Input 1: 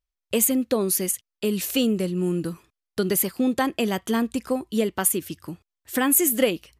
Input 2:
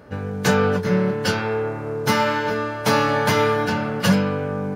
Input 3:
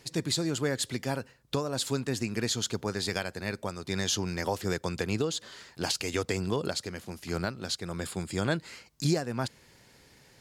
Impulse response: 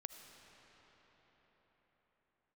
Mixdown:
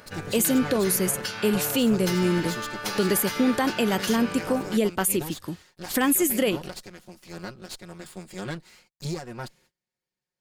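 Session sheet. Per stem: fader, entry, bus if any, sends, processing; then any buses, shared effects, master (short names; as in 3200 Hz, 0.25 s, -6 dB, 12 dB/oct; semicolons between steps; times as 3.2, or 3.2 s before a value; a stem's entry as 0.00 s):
+1.5 dB, 0.00 s, no send, dry
-1.5 dB, 0.00 s, send -5 dB, tilt shelf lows -9 dB, about 1200 Hz; compressor 10:1, threshold -25 dBFS, peak gain reduction 12 dB; auto duck -7 dB, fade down 0.20 s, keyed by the third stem
-5.0 dB, 0.00 s, no send, minimum comb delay 5.5 ms; gate -54 dBFS, range -26 dB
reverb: on, pre-delay 35 ms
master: limiter -13 dBFS, peak gain reduction 8 dB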